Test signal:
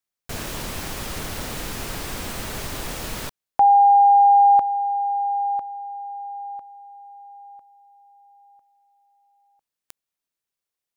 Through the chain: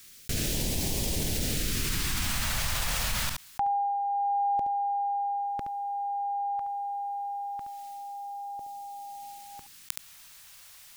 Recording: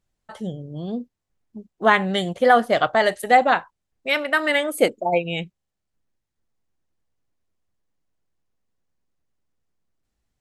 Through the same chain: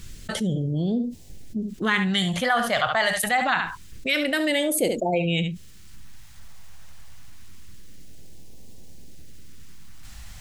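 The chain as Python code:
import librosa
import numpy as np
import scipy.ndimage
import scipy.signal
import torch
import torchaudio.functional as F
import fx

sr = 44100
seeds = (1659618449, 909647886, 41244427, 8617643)

y = x + 10.0 ** (-14.0 / 20.0) * np.pad(x, (int(71 * sr / 1000.0), 0))[:len(x)]
y = fx.phaser_stages(y, sr, stages=2, low_hz=340.0, high_hz=1300.0, hz=0.26, feedback_pct=20)
y = fx.env_flatten(y, sr, amount_pct=70)
y = y * 10.0 ** (-4.0 / 20.0)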